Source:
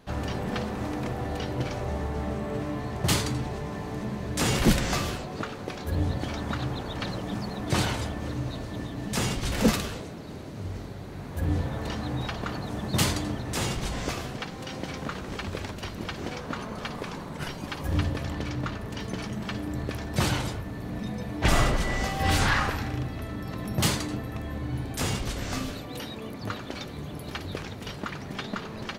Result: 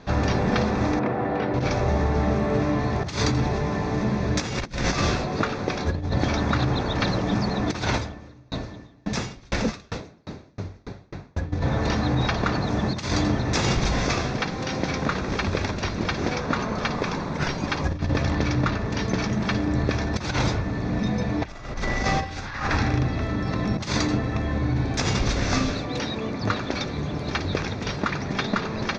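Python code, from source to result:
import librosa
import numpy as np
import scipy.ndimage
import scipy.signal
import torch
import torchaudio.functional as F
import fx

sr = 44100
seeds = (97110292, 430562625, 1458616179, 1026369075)

y = fx.bandpass_edges(x, sr, low_hz=170.0, high_hz=2100.0, at=(0.99, 1.54))
y = fx.tremolo_decay(y, sr, direction='decaying', hz=fx.line((7.97, 1.4), (11.52, 4.6)), depth_db=34, at=(7.97, 11.52), fade=0.02)
y = scipy.signal.sosfilt(scipy.signal.ellip(4, 1.0, 80, 6200.0, 'lowpass', fs=sr, output='sos'), y)
y = fx.notch(y, sr, hz=3000.0, q=6.0)
y = fx.over_compress(y, sr, threshold_db=-30.0, ratio=-0.5)
y = y * 10.0 ** (8.0 / 20.0)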